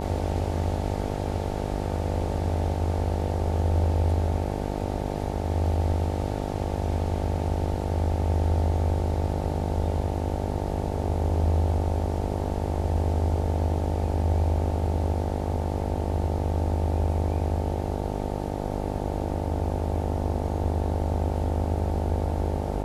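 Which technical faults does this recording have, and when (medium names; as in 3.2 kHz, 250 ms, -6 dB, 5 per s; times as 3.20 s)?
buzz 50 Hz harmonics 18 -30 dBFS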